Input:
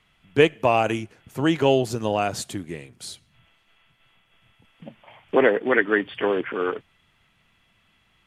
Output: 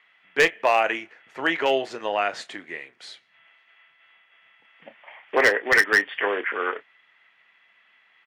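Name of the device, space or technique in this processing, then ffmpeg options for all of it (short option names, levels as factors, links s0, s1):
megaphone: -filter_complex "[0:a]highpass=550,lowpass=3600,equalizer=f=1900:t=o:w=0.53:g=10,asoftclip=type=hard:threshold=0.266,asplit=2[s0][s1];[s1]adelay=30,volume=0.211[s2];[s0][s2]amix=inputs=2:normalize=0,volume=1.12"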